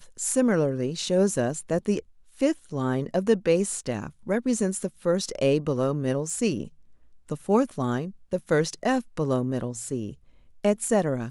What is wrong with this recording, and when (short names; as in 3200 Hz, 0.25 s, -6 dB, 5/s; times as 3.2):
6.3 gap 2.5 ms